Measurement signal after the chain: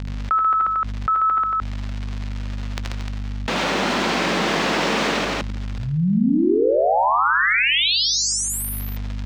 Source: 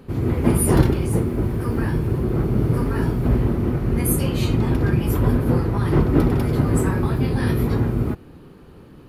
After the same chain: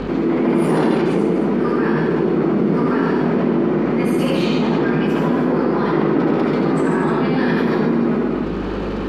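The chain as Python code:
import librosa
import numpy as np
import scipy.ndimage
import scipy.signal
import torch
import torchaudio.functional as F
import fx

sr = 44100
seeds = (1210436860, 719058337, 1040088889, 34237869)

y = scipy.signal.sosfilt(scipy.signal.butter(12, 160.0, 'highpass', fs=sr, output='sos'), x)
y = fx.low_shelf(y, sr, hz=210.0, db=-5.0)
y = fx.rider(y, sr, range_db=3, speed_s=2.0)
y = fx.add_hum(y, sr, base_hz=50, snr_db=30)
y = fx.dmg_crackle(y, sr, seeds[0], per_s=77.0, level_db=-43.0)
y = fx.air_absorb(y, sr, metres=160.0)
y = fx.echo_multitap(y, sr, ms=(72, 81, 96, 137, 230, 302), db=(-8.0, -4.0, -14.0, -4.0, -10.0, -10.0))
y = fx.env_flatten(y, sr, amount_pct=70)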